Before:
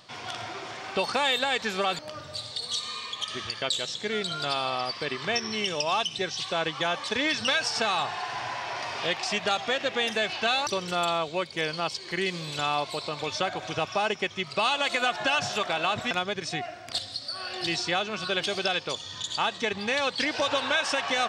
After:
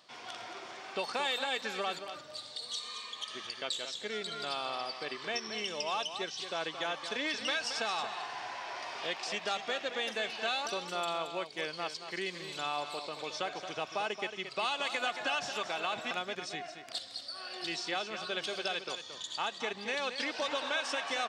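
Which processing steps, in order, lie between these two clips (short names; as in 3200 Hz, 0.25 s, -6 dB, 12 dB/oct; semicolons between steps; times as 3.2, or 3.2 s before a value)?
HPF 230 Hz 12 dB/oct; on a send: echo 0.224 s -9.5 dB; on the sum: gain -8 dB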